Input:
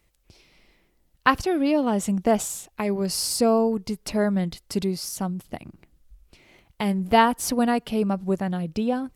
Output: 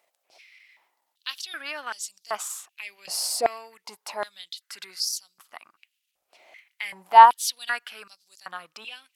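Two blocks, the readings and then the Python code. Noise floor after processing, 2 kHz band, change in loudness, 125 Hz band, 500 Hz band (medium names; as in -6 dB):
-79 dBFS, -1.0 dB, +0.5 dB, under -30 dB, -9.5 dB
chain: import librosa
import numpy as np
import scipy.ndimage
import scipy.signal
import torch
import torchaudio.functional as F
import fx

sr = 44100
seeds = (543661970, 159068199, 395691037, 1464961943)

y = fx.transient(x, sr, attack_db=-7, sustain_db=-3)
y = fx.filter_held_highpass(y, sr, hz=2.6, low_hz=680.0, high_hz=4700.0)
y = y * 10.0 ** (-1.0 / 20.0)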